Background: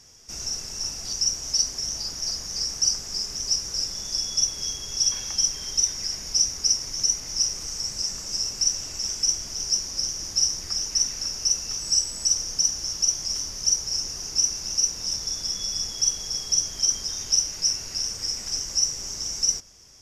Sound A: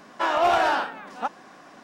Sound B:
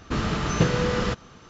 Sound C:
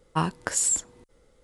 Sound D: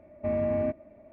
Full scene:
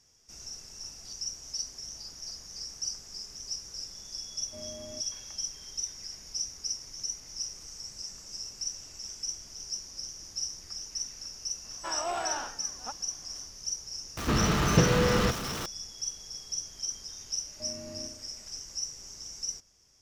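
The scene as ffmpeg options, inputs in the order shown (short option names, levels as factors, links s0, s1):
-filter_complex "[4:a]asplit=2[s0][s1];[0:a]volume=0.237[s2];[2:a]aeval=exprs='val(0)+0.5*0.0355*sgn(val(0))':c=same[s3];[s1]aecho=1:1:64|128|192|256|320|384|448:0.447|0.241|0.13|0.0703|0.038|0.0205|0.0111[s4];[s0]atrim=end=1.12,asetpts=PTS-STARTPTS,volume=0.133,afade=t=in:d=0.004:c=hsin,afade=t=out:st=1.116:d=0.004:c=hsin,adelay=189189S[s5];[1:a]atrim=end=1.83,asetpts=PTS-STARTPTS,volume=0.224,afade=t=in:d=0.004:c=hsin,afade=t=out:st=1.826:d=0.004:c=hsin,adelay=11640[s6];[s3]atrim=end=1.49,asetpts=PTS-STARTPTS,volume=0.794,afade=t=in:d=0.004:c=hsin,afade=t=out:st=1.486:d=0.004:c=hsin,adelay=14170[s7];[s4]atrim=end=1.12,asetpts=PTS-STARTPTS,volume=0.158,afade=t=in:d=0.004:c=hsin,afade=t=out:st=1.116:d=0.004:c=hsin,adelay=17360[s8];[s2][s5][s6][s7][s8]amix=inputs=5:normalize=0"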